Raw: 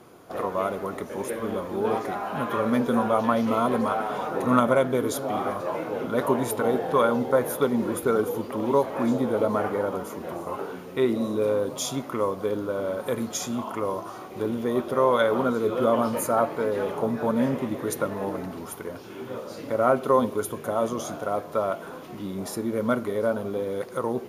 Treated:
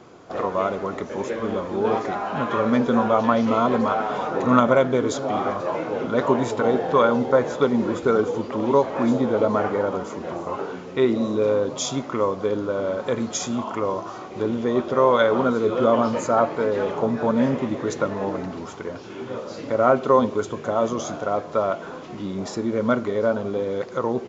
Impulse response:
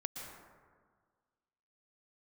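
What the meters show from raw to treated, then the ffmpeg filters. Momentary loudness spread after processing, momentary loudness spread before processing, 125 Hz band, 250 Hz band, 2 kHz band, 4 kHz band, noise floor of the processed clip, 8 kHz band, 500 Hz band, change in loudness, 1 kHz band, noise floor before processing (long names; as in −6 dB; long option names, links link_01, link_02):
11 LU, 11 LU, +3.5 dB, +3.5 dB, +3.5 dB, +3.5 dB, −37 dBFS, +0.5 dB, +3.5 dB, +3.5 dB, +3.5 dB, −40 dBFS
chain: -af "aresample=16000,aresample=44100,volume=3.5dB"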